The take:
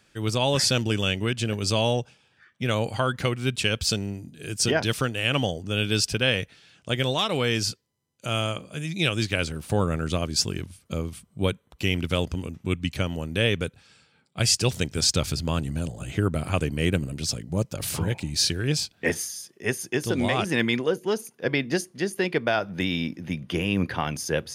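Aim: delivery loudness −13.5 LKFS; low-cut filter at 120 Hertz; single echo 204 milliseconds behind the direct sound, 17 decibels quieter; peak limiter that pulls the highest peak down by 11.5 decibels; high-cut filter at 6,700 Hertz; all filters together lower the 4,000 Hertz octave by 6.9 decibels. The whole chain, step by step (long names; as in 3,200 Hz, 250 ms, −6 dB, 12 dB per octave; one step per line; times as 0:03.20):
high-pass filter 120 Hz
low-pass filter 6,700 Hz
parametric band 4,000 Hz −9 dB
brickwall limiter −20.5 dBFS
single-tap delay 204 ms −17 dB
level +19 dB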